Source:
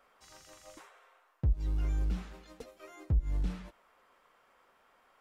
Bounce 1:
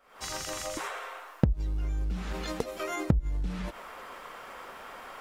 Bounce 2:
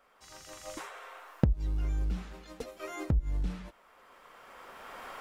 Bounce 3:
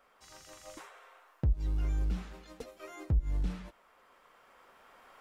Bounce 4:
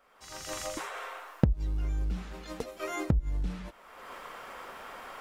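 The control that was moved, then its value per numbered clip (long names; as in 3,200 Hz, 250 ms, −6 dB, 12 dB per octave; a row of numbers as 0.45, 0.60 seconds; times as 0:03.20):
camcorder AGC, rising by: 88, 14, 5.4, 34 dB per second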